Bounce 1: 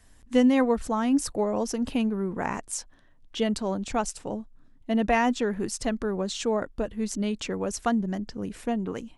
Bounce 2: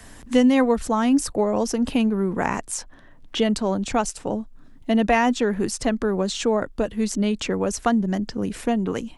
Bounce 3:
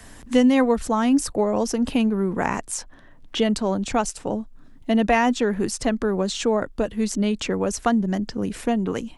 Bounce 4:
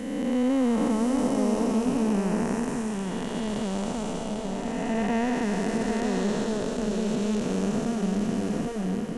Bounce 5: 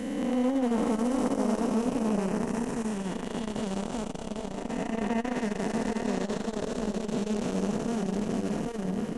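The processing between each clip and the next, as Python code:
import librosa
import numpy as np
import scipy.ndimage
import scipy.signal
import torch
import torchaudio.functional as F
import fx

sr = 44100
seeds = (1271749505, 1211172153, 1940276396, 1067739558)

y1 = fx.band_squash(x, sr, depth_pct=40)
y1 = y1 * librosa.db_to_amplitude(5.0)
y2 = y1
y3 = fx.spec_blur(y2, sr, span_ms=707.0)
y3 = y3 + 10.0 ** (-4.0 / 20.0) * np.pad(y3, (int(798 * sr / 1000.0), 0))[:len(y3)]
y4 = fx.transformer_sat(y3, sr, knee_hz=560.0)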